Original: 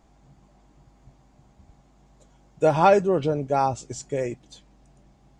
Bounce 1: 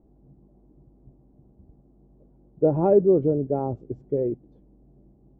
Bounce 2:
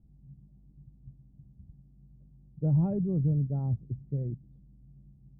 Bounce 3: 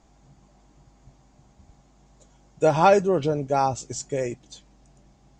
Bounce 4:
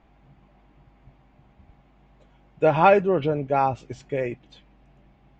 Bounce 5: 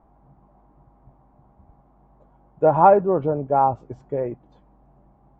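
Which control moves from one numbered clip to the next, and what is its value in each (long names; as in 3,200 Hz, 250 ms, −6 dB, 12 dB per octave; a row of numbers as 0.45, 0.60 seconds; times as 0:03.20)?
low-pass with resonance, frequency: 390, 150, 6,900, 2,600, 1,000 Hertz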